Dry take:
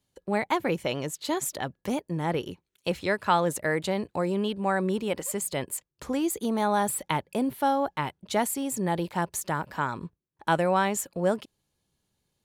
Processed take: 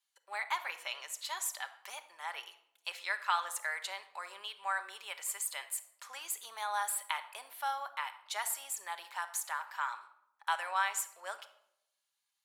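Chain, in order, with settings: HPF 990 Hz 24 dB/oct; shoebox room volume 2300 m³, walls furnished, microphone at 1.2 m; gain -4.5 dB

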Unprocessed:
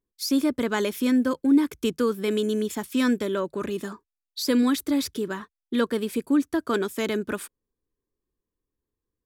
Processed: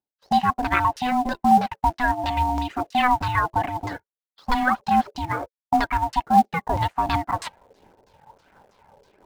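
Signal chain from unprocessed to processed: gate -38 dBFS, range -15 dB; HPF 190 Hz 6 dB/oct; reverse; upward compressor, threshold -26 dBFS; reverse; phaser 1.4 Hz, delay 3 ms, feedback 48%; ring modulator 500 Hz; LFO low-pass saw down 3.1 Hz 480–5600 Hz; in parallel at -10 dB: companded quantiser 4-bit; on the sum: LFO bell 0.76 Hz 330–1500 Hz +8 dB

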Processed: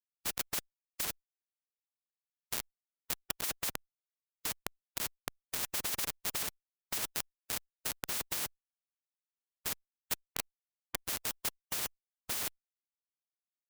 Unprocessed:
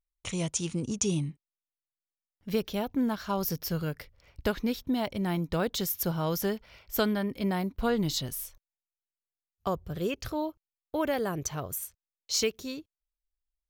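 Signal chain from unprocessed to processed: frequency quantiser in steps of 6 st; low shelf 200 Hz +7 dB; LFO high-pass saw up 5.6 Hz 360–4400 Hz; Schmitt trigger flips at -19.5 dBFS; HPF 130 Hz 6 dB/oct; high shelf 10000 Hz +11 dB; maximiser +21.5 dB; spectral compressor 10:1; gain -8 dB

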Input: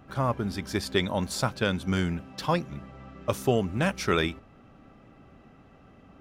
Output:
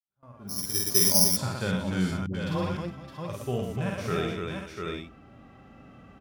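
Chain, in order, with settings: opening faded in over 1.30 s; tapped delay 49/117/297/492/696/761 ms -6.5/-7.5/-4/-15.5/-5.5/-11 dB; AGC gain up to 14.5 dB; 0.49–1.37 careless resampling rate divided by 8×, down filtered, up zero stuff; 2.26–2.77 dispersion highs, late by 82 ms, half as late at 440 Hz; harmonic-percussive split percussive -17 dB; gate with hold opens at -34 dBFS; gain -11 dB

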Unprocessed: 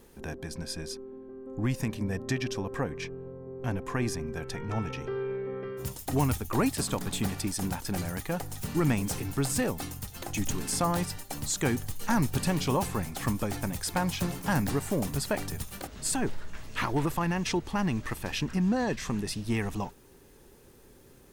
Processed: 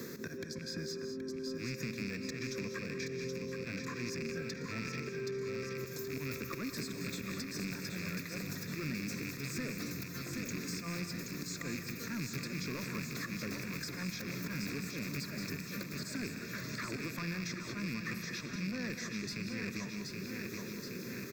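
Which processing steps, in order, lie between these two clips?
rattling part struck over -34 dBFS, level -18 dBFS; HPF 130 Hz 24 dB/oct; auto swell 0.214 s; compressor 2:1, threshold -50 dBFS, peak gain reduction 15.5 dB; soft clip -39 dBFS, distortion -12 dB; fixed phaser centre 3000 Hz, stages 6; on a send: feedback echo 0.774 s, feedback 55%, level -7 dB; on the sum: non-linear reverb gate 0.23 s rising, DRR 8 dB; three-band squash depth 70%; gain +8.5 dB

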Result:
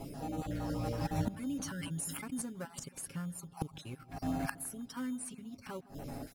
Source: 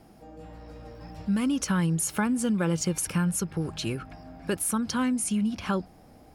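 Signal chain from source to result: random spectral dropouts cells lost 32%; high shelf 4100 Hz -5 dB; comb 7.3 ms, depth 75%; flipped gate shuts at -30 dBFS, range -24 dB; in parallel at -11 dB: sample-and-hold 13×; on the sum: bell 12000 Hz +9 dB 1.5 oct; on a send: darkening echo 0.159 s, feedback 67%, low-pass 990 Hz, level -18 dB; 1.56–2.42 on the sum: sustainer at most 23 dB/s; gain +6.5 dB

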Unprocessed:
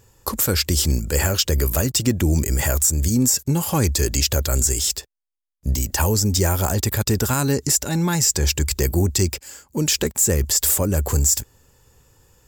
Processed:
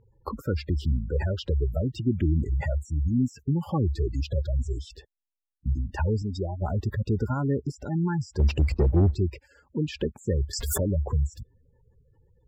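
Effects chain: spectral gate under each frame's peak -15 dB strong; 6.22–6.62 tilt +2 dB/oct; 8.39–9.15 sample leveller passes 2; air absorption 390 m; 10.53–10.95 backwards sustainer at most 31 dB/s; gain -4.5 dB

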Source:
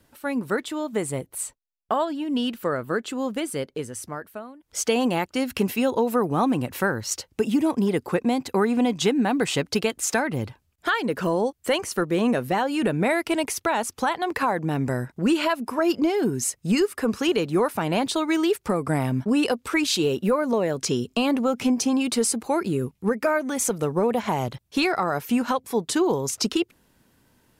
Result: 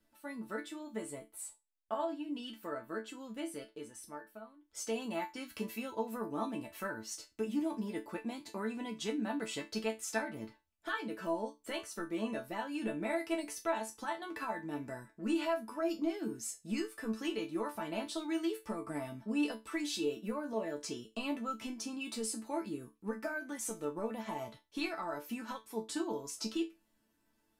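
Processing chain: resonator bank A3 sus4, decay 0.22 s; gain +1 dB

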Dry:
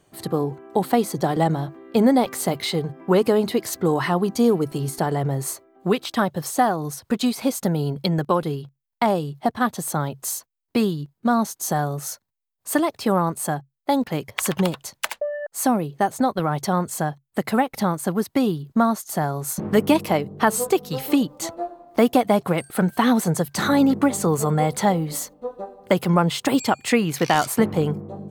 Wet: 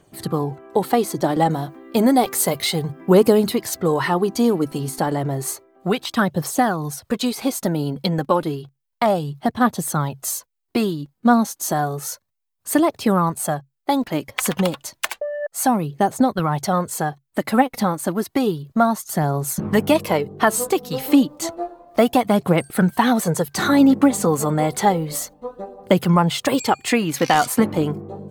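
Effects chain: 1.5–3.55 high shelf 7000 Hz +9 dB; phaser 0.31 Hz, delay 4.2 ms, feedback 39%; gain +1.5 dB

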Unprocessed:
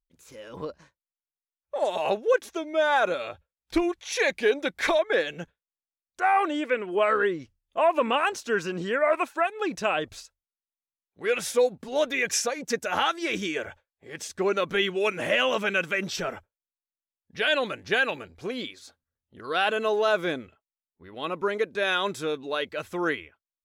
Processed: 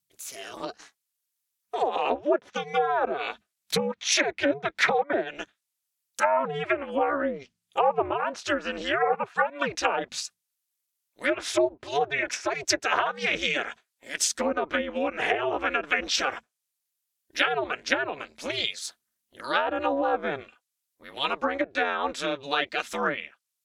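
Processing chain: ring modulator 140 Hz; treble ducked by the level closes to 750 Hz, closed at -23 dBFS; tilt +4 dB/oct; gain +6.5 dB

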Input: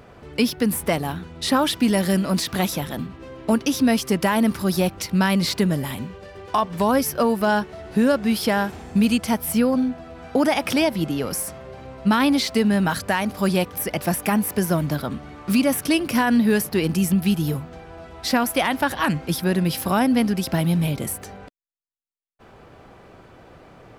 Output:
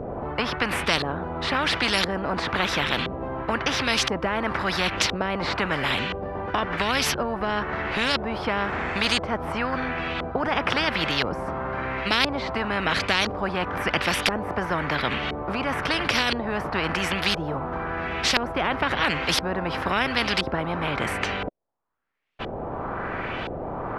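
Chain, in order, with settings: LFO low-pass saw up 0.98 Hz 460–3400 Hz; spectral compressor 4:1; gain +2 dB

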